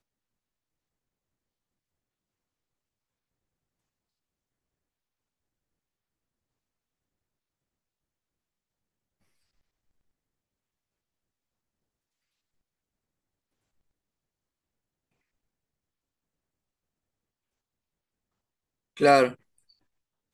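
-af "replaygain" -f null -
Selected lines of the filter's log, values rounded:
track_gain = +62.6 dB
track_peak = 0.339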